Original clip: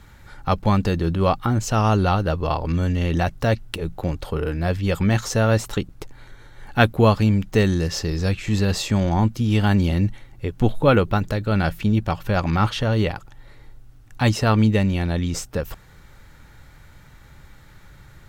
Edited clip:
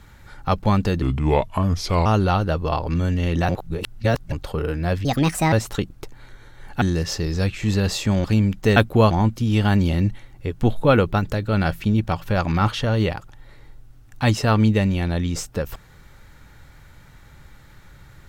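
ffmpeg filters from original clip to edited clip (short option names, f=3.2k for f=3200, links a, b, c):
-filter_complex "[0:a]asplit=11[a][b][c][d][e][f][g][h][i][j][k];[a]atrim=end=1.024[l];[b]atrim=start=1.02:end=1.84,asetpts=PTS-STARTPTS,asetrate=34839,aresample=44100[m];[c]atrim=start=1.836:end=3.272[n];[d]atrim=start=3.268:end=4.102,asetpts=PTS-STARTPTS,areverse[o];[e]atrim=start=4.098:end=4.834[p];[f]atrim=start=4.83:end=5.51,asetpts=PTS-STARTPTS,asetrate=63063,aresample=44100[q];[g]atrim=start=5.506:end=6.802[r];[h]atrim=start=7.658:end=9.092[s];[i]atrim=start=7.138:end=7.662[t];[j]atrim=start=6.798:end=7.142[u];[k]atrim=start=9.088[v];[l][m]acrossfade=d=0.004:c1=hsin:c2=hsin[w];[w][n]acrossfade=d=0.004:c1=hsin:c2=hsin[x];[x][o]acrossfade=d=0.004:c1=hsin:c2=hsin[y];[y][p]acrossfade=d=0.004:c1=hsin:c2=hsin[z];[z][q]acrossfade=d=0.004:c1=hsin:c2=hsin[aa];[aa][r]acrossfade=d=0.004:c1=hsin:c2=hsin[ab];[ab][s]acrossfade=d=0.004:c1=hsin:c2=hsin[ac];[ac][t]acrossfade=d=0.004:c1=hsin:c2=hsin[ad];[ad][u]acrossfade=d=0.004:c1=hsin:c2=hsin[ae];[ae][v]acrossfade=d=0.004:c1=hsin:c2=hsin"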